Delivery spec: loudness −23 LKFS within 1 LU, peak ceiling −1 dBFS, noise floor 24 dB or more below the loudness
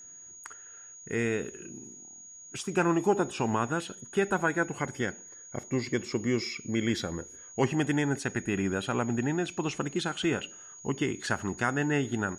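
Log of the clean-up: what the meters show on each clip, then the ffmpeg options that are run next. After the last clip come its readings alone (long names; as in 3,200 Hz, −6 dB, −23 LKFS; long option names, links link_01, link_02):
interfering tone 6,700 Hz; level of the tone −46 dBFS; integrated loudness −30.5 LKFS; sample peak −12.5 dBFS; target loudness −23.0 LKFS
→ -af "bandreject=frequency=6700:width=30"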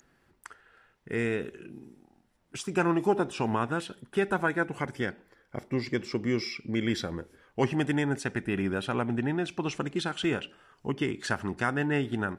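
interfering tone none found; integrated loudness −30.5 LKFS; sample peak −12.5 dBFS; target loudness −23.0 LKFS
→ -af "volume=7.5dB"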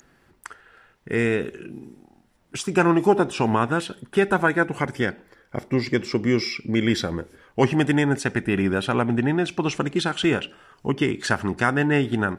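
integrated loudness −23.0 LKFS; sample peak −5.0 dBFS; background noise floor −61 dBFS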